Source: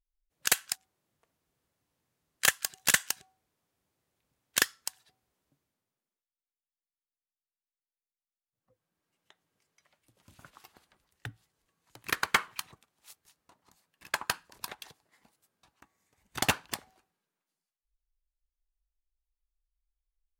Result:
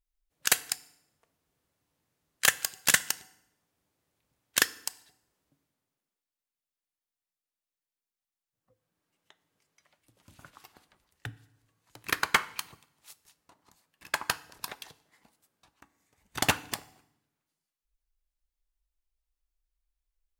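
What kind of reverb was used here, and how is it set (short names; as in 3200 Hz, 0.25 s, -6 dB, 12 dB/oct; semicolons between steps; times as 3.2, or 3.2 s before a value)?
FDN reverb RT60 0.82 s, low-frequency decay 1.3×, high-frequency decay 0.85×, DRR 16 dB; gain +1.5 dB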